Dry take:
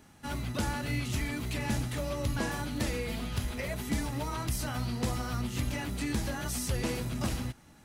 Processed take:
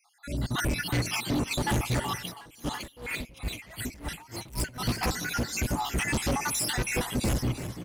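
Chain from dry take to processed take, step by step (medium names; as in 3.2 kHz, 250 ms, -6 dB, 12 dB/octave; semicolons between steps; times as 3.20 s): random holes in the spectrogram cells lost 68%; level rider gain up to 14 dB; hard clipper -24 dBFS, distortion -5 dB; frequency-shifting echo 338 ms, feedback 46%, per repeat +54 Hz, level -11.5 dB; spring tank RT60 3.8 s, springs 57 ms, chirp 25 ms, DRR 20 dB; 2.18–4.79 s: logarithmic tremolo 1.8 Hz -> 4.7 Hz, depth 24 dB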